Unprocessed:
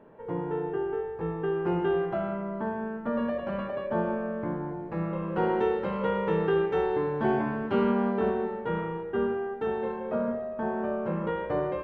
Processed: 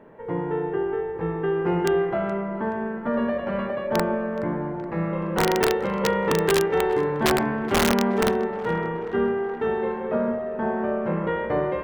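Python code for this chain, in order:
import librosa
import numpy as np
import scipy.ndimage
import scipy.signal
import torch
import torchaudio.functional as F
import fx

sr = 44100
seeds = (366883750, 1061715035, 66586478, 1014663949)

y = fx.peak_eq(x, sr, hz=2000.0, db=7.0, octaves=0.29)
y = (np.mod(10.0 ** (17.0 / 20.0) * y + 1.0, 2.0) - 1.0) / 10.0 ** (17.0 / 20.0)
y = fx.echo_tape(y, sr, ms=423, feedback_pct=81, wet_db=-14.5, lp_hz=2900.0, drive_db=17.0, wow_cents=16)
y = y * librosa.db_to_amplitude(4.5)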